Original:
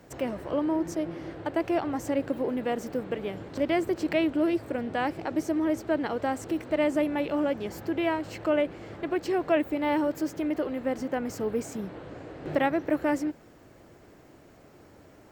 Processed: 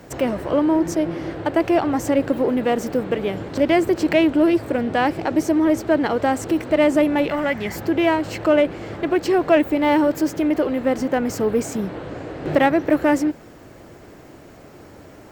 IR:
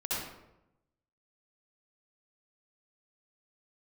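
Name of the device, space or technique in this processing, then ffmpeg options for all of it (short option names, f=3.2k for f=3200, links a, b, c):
parallel distortion: -filter_complex "[0:a]asplit=2[a][b];[b]asoftclip=type=hard:threshold=-29.5dB,volume=-11dB[c];[a][c]amix=inputs=2:normalize=0,asettb=1/sr,asplit=3[d][e][f];[d]atrim=end=7.294[g];[e]atrim=start=7.29:end=7.76,asetpts=PTS-STARTPTS,afade=t=in:d=0.004:c=qsin,afade=t=out:st=0.466:d=0.004:c=qsin,equalizer=f=315:t=o:w=0.33:g=-10,equalizer=f=500:t=o:w=0.33:g=-9,equalizer=f=2k:t=o:w=0.33:g=12,equalizer=f=16k:t=o:w=0.33:g=5[h];[f]atrim=start=7.756[i];[g][h]acrossfade=d=0.004:c1=hsin:c2=qsin[j];[j][i]acrossfade=d=0.004:c1=qsin:c2=hsin,volume=8dB"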